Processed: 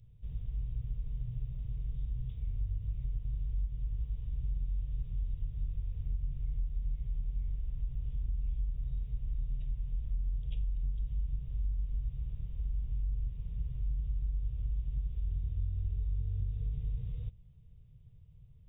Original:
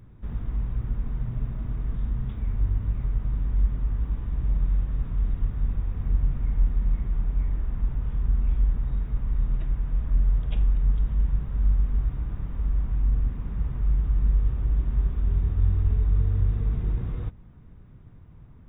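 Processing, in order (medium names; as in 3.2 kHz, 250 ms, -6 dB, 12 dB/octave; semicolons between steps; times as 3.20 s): FFT filter 140 Hz 0 dB, 310 Hz -25 dB, 450 Hz -7 dB, 800 Hz -17 dB, 1.5 kHz -22 dB, 2.9 kHz 0 dB; compression, threshold -22 dBFS, peak gain reduction 7 dB; trim -7.5 dB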